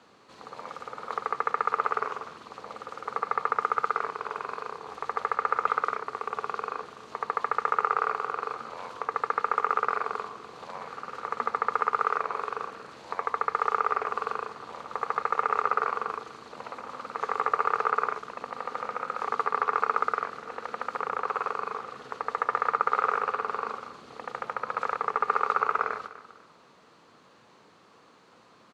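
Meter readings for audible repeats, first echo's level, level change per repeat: 2, -15.5 dB, -11.0 dB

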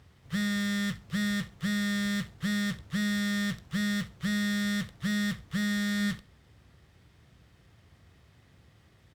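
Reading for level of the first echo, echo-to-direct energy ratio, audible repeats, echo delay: -19.5 dB, -19.5 dB, 2, 67 ms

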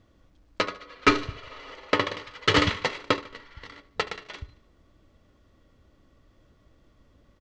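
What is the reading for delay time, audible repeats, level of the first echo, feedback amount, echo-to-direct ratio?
74 ms, 3, -18.0 dB, 48%, -17.0 dB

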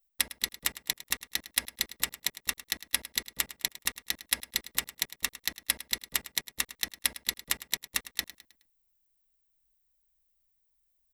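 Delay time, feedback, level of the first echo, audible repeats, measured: 0.105 s, 43%, -16.0 dB, 3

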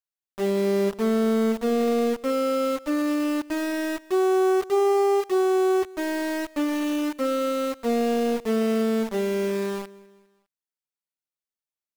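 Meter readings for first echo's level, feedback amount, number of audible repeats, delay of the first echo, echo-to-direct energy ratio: -22.5 dB, 49%, 3, 0.202 s, -21.5 dB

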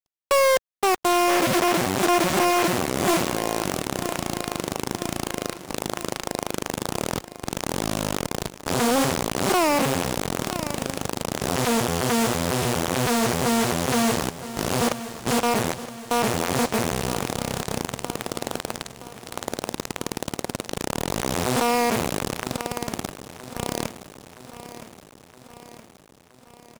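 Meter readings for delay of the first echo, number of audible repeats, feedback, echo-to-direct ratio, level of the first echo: 0.969 s, 5, 59%, -12.0 dB, -14.0 dB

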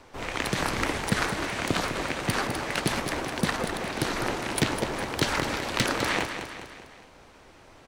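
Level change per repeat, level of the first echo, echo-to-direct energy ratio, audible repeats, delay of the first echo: -5.5 dB, -8.5 dB, -7.0 dB, 4, 0.204 s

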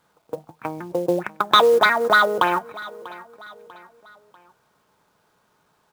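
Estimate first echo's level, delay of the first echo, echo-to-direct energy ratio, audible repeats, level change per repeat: -19.5 dB, 0.643 s, -18.5 dB, 3, -7.0 dB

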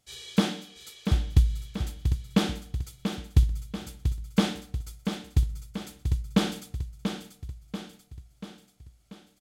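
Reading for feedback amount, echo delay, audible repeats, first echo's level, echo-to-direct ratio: 53%, 0.687 s, 5, -7.5 dB, -6.0 dB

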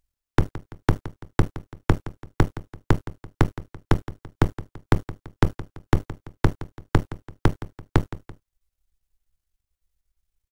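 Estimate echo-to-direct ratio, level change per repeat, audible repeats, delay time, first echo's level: -15.0 dB, -7.0 dB, 2, 0.168 s, -16.0 dB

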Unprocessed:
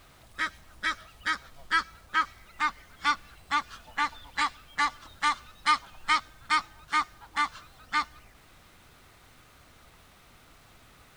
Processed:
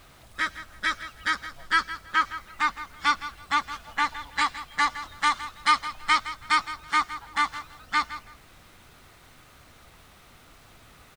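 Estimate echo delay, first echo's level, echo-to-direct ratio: 0.164 s, -13.5 dB, -13.5 dB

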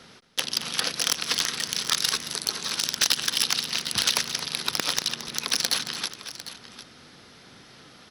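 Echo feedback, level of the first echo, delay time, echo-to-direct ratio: no steady repeat, -12.5 dB, 0.222 s, -10.0 dB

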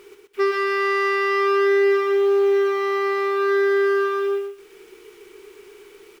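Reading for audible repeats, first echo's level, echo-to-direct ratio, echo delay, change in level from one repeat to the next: 2, -3.5 dB, -3.5 dB, 0.123 s, -14.5 dB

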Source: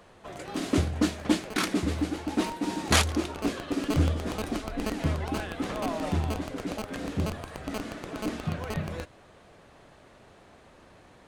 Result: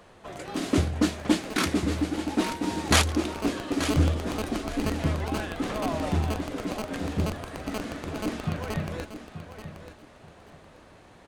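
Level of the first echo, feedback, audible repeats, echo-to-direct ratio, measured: -11.0 dB, 22%, 2, -11.0 dB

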